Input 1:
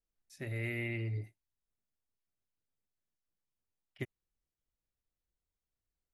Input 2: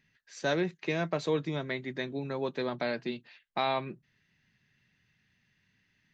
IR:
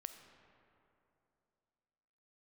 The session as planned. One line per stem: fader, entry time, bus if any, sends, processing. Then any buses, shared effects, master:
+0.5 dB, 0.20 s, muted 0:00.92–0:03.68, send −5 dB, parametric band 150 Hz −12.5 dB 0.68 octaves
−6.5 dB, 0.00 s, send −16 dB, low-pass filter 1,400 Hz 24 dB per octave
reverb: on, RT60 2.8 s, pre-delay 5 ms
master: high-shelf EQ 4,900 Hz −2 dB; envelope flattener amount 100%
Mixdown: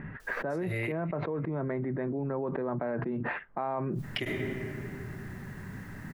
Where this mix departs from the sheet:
stem 1 +0.5 dB → −8.0 dB
stem 2: send off

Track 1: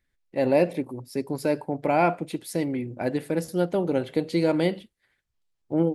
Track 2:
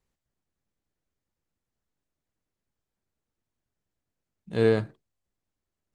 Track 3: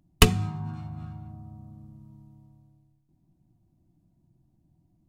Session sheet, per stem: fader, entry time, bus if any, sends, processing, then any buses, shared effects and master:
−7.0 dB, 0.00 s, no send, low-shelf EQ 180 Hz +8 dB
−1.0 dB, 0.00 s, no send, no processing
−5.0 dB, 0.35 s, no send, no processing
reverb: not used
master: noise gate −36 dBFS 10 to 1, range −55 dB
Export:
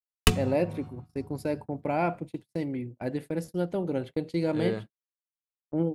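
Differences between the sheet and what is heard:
stem 2 −1.0 dB → −9.5 dB
stem 3: entry 0.35 s → 0.05 s

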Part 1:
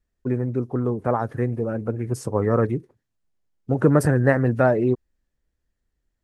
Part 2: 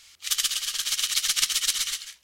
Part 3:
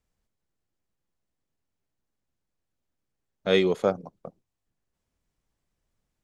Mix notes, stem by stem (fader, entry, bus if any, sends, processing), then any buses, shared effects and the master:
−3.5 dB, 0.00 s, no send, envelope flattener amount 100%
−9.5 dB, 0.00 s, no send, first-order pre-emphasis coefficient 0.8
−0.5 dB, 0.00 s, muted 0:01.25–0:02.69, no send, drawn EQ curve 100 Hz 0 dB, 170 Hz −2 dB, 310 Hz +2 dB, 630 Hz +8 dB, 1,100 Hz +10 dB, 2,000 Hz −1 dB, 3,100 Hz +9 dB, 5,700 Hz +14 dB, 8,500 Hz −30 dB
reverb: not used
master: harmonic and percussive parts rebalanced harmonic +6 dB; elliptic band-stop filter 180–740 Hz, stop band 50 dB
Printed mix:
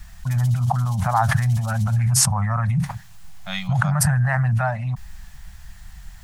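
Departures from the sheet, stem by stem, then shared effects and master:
stem 2 −9.5 dB → −16.5 dB
stem 3: missing drawn EQ curve 100 Hz 0 dB, 170 Hz −2 dB, 310 Hz +2 dB, 630 Hz +8 dB, 1,100 Hz +10 dB, 2,000 Hz −1 dB, 3,100 Hz +9 dB, 5,700 Hz +14 dB, 8,500 Hz −30 dB
master: missing harmonic and percussive parts rebalanced harmonic +6 dB

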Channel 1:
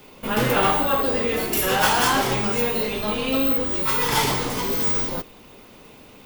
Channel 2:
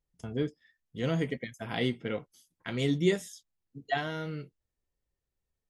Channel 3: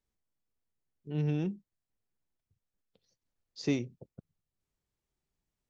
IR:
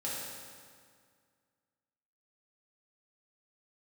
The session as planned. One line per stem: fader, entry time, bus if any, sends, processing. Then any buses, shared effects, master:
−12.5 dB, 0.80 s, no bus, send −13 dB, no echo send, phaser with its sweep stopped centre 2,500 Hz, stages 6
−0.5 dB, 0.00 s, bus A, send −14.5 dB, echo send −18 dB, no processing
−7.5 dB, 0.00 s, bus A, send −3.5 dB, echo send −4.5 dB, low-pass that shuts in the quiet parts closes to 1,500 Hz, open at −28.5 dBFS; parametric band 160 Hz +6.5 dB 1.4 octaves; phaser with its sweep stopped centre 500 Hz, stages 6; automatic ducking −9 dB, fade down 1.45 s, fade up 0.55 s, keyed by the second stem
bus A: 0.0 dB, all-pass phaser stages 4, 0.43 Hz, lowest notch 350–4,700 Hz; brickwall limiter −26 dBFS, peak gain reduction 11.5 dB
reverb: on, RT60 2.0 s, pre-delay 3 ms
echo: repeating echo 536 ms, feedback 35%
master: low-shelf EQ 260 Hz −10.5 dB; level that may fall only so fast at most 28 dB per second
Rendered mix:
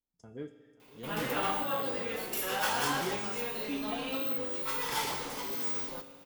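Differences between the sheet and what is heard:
stem 1: missing phaser with its sweep stopped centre 2,500 Hz, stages 6
stem 2 −0.5 dB → −8.5 dB
master: missing level that may fall only so fast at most 28 dB per second

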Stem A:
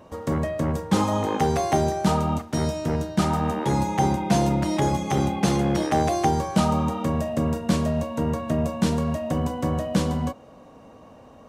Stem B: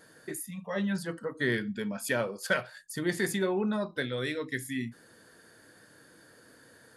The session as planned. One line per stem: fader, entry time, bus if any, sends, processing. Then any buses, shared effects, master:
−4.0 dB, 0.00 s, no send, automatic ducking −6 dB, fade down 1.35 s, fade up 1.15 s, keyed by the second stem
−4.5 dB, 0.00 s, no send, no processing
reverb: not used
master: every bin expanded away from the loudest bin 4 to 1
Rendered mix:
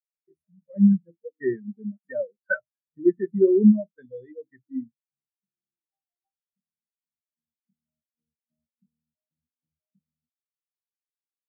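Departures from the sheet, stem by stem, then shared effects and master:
stem A −4.0 dB → −13.5 dB
stem B −4.5 dB → +6.5 dB

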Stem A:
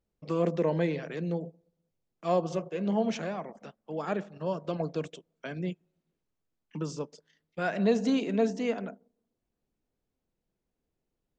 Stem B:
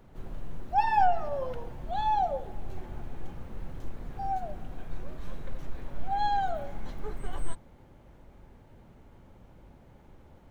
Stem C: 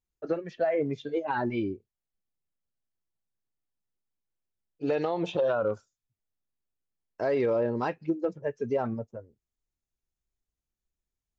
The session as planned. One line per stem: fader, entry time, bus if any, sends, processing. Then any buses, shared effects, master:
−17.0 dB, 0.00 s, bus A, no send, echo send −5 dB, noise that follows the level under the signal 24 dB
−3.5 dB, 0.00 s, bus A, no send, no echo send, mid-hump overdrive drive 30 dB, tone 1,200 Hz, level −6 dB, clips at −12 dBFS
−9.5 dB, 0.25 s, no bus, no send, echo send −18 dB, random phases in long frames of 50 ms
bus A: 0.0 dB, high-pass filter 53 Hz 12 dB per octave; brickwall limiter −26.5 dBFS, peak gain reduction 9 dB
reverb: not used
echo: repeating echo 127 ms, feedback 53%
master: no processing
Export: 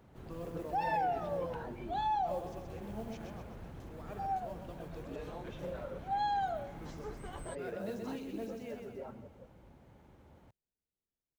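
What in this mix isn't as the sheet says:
stem B: missing mid-hump overdrive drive 30 dB, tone 1,200 Hz, level −6 dB, clips at −12 dBFS
stem C −9.5 dB → −17.0 dB

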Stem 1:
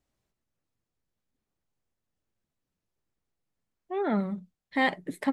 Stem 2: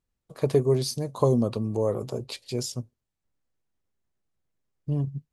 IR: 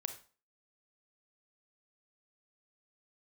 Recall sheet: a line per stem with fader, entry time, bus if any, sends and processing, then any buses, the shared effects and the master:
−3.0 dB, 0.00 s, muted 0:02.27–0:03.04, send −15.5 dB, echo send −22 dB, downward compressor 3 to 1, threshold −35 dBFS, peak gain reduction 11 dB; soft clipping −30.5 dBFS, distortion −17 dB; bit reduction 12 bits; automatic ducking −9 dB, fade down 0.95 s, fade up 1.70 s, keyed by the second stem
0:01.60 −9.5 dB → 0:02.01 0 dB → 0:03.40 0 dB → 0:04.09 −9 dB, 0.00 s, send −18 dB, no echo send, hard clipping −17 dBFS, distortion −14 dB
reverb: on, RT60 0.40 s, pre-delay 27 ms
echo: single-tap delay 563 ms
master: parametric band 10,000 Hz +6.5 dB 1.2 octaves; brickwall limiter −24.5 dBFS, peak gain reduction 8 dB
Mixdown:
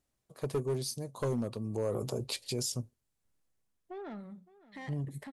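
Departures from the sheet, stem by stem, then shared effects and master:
stem 1: missing bit reduction 12 bits
stem 2: send off

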